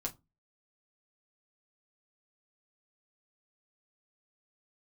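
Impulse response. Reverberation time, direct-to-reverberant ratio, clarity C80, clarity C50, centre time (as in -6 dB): 0.20 s, -2.0 dB, 28.5 dB, 19.5 dB, 8 ms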